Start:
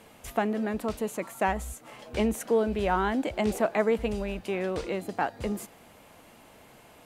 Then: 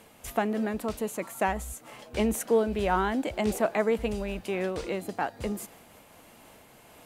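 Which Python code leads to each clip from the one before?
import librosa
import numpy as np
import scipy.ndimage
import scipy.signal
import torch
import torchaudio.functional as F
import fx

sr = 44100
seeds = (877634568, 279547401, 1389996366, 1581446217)

y = fx.high_shelf(x, sr, hz=6900.0, db=5.0)
y = fx.am_noise(y, sr, seeds[0], hz=5.7, depth_pct=50)
y = y * librosa.db_to_amplitude(2.0)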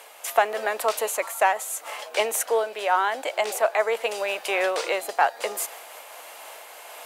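y = scipy.signal.sosfilt(scipy.signal.butter(4, 550.0, 'highpass', fs=sr, output='sos'), x)
y = fx.rider(y, sr, range_db=4, speed_s=0.5)
y = y * librosa.db_to_amplitude(9.0)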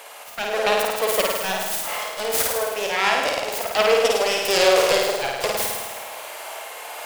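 y = fx.self_delay(x, sr, depth_ms=0.44)
y = fx.auto_swell(y, sr, attack_ms=209.0)
y = fx.room_flutter(y, sr, wall_m=9.1, rt60_s=1.2)
y = y * librosa.db_to_amplitude(5.0)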